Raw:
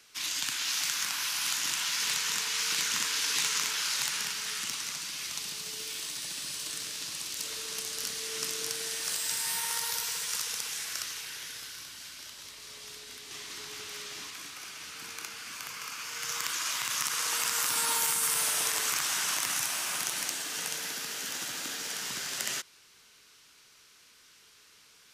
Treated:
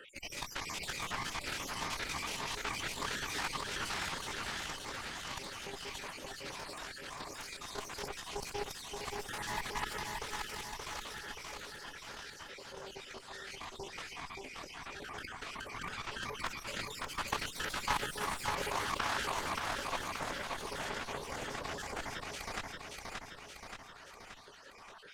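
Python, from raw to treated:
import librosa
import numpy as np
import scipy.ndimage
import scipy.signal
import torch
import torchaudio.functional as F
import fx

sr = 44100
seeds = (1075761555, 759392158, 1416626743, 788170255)

p1 = fx.spec_dropout(x, sr, seeds[0], share_pct=73)
p2 = np.clip(p1, -10.0 ** (-27.5 / 20.0), 10.0 ** (-27.5 / 20.0))
p3 = fx.bandpass_q(p2, sr, hz=650.0, q=1.4)
p4 = fx.cheby_harmonics(p3, sr, harmonics=(2, 3, 7, 8), levels_db=(-7, -18, -25, -18), full_scale_db=-31.0)
p5 = p4 + fx.echo_feedback(p4, sr, ms=577, feedback_pct=39, wet_db=-6.5, dry=0)
p6 = fx.pitch_keep_formants(p5, sr, semitones=-1.5)
p7 = fx.env_flatten(p6, sr, amount_pct=50)
y = p7 * 10.0 ** (10.0 / 20.0)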